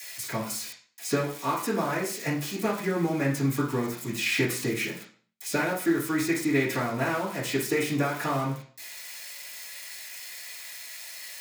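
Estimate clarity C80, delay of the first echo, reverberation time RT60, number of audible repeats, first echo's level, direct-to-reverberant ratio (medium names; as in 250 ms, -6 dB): 11.5 dB, no echo, 0.45 s, no echo, no echo, -10.0 dB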